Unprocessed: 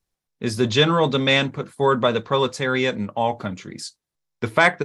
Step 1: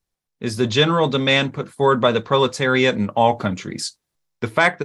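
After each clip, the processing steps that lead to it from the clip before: AGC; gain -1 dB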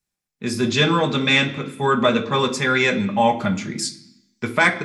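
reverb RT60 0.65 s, pre-delay 3 ms, DRR 4 dB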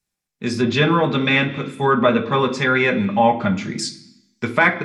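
treble ducked by the level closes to 2500 Hz, closed at -15.5 dBFS; gain +2 dB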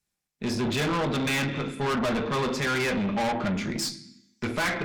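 tube stage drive 24 dB, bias 0.45

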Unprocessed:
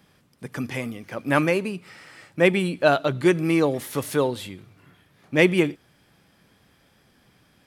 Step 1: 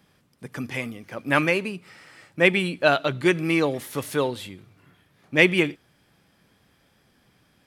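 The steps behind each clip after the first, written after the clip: dynamic EQ 2600 Hz, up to +7 dB, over -37 dBFS, Q 0.72; gain -2.5 dB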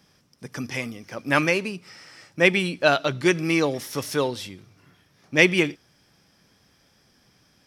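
bell 5500 Hz +13.5 dB 0.38 oct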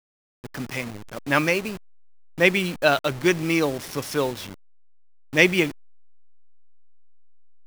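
level-crossing sampler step -31.5 dBFS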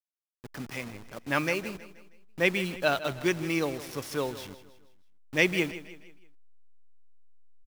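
feedback echo 0.159 s, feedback 43%, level -15 dB; gain -7 dB

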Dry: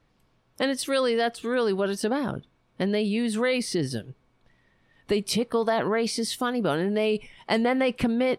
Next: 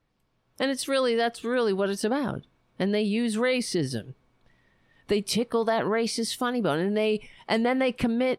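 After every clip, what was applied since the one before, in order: AGC gain up to 7.5 dB; gain -7.5 dB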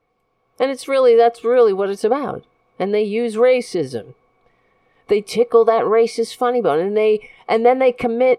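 small resonant body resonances 480/730/1100/2200 Hz, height 17 dB, ringing for 30 ms; gain -2 dB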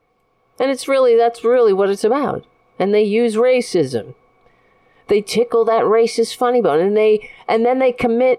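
maximiser +10.5 dB; gain -5.5 dB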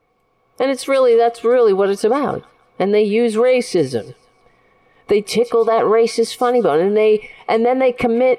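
thin delay 0.16 s, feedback 38%, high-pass 1700 Hz, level -18 dB

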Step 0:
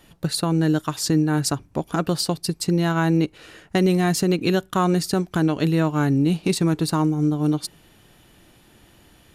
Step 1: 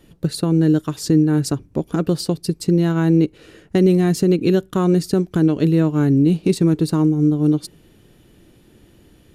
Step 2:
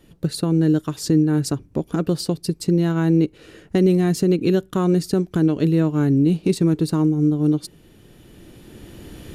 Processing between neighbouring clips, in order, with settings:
resonant low shelf 580 Hz +7 dB, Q 1.5; gain -3.5 dB
recorder AGC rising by 8.7 dB/s; gain -2 dB

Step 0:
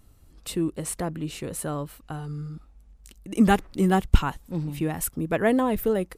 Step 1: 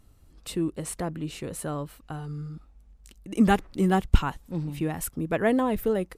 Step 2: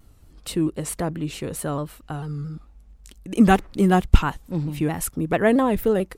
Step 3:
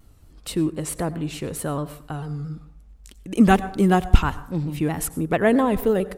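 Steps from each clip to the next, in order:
high shelf 9600 Hz -5 dB; gain -1.5 dB
shaped vibrato saw down 4.5 Hz, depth 100 cents; gain +5 dB
plate-style reverb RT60 0.59 s, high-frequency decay 0.5×, pre-delay 80 ms, DRR 16 dB

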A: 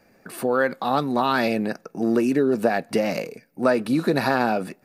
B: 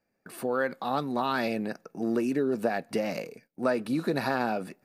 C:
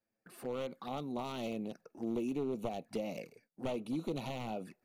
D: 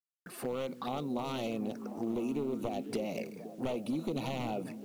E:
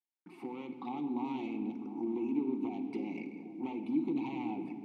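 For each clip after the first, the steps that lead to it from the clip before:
gate -48 dBFS, range -14 dB; gain -7 dB
one-sided fold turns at -23.5 dBFS; envelope flanger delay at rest 9.2 ms, full sweep at -28 dBFS; gain -7.5 dB
compressor 2.5:1, threshold -43 dBFS, peak gain reduction 8 dB; delay with a stepping band-pass 0.25 s, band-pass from 200 Hz, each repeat 0.7 oct, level -6 dB; requantised 12-bit, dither none; gain +8.5 dB
vowel filter u; shoebox room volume 3200 m³, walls mixed, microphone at 1 m; gain +8.5 dB

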